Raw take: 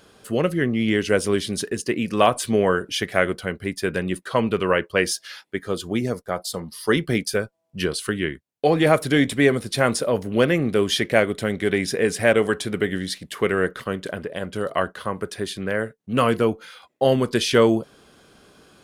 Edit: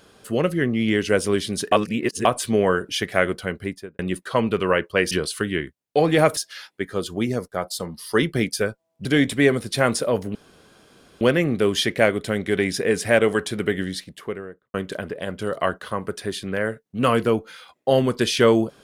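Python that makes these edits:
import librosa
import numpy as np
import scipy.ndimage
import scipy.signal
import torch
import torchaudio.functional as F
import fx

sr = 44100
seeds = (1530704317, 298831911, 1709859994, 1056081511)

y = fx.studio_fade_out(x, sr, start_s=3.59, length_s=0.4)
y = fx.studio_fade_out(y, sr, start_s=12.91, length_s=0.97)
y = fx.edit(y, sr, fx.reverse_span(start_s=1.72, length_s=0.53),
    fx.move(start_s=7.79, length_s=1.26, to_s=5.11),
    fx.insert_room_tone(at_s=10.35, length_s=0.86), tone=tone)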